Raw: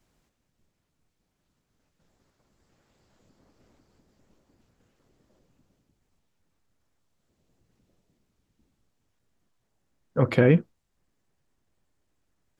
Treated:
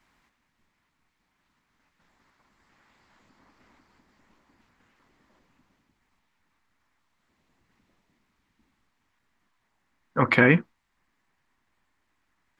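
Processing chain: graphic EQ 125/250/500/1000/2000/4000 Hz -3/+5/-4/+11/+12/+4 dB; gain -2.5 dB

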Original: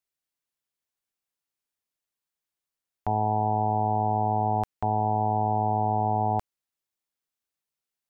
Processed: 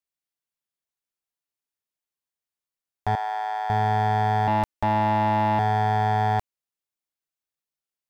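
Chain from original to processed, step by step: 4.47–5.59 comb 3.4 ms, depth 73%; sample leveller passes 2; 3.15–3.7 ladder high-pass 540 Hz, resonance 20%

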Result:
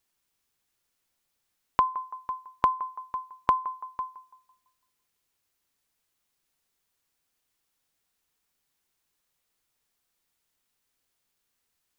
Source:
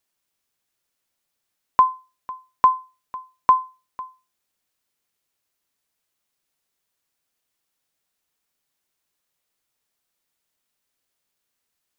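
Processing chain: low shelf 77 Hz +7 dB; notch 610 Hz, Q 12; on a send: narrowing echo 0.167 s, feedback 41%, band-pass 830 Hz, level -17 dB; on the sum: compressor 2.5:1, threshold -23 dBFS, peak gain reduction 8.5 dB

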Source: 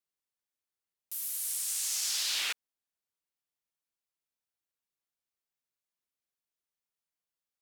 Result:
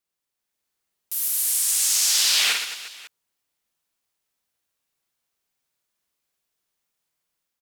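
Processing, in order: AGC gain up to 5 dB; reverse bouncing-ball echo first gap 50 ms, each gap 1.4×, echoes 5; gain +5 dB

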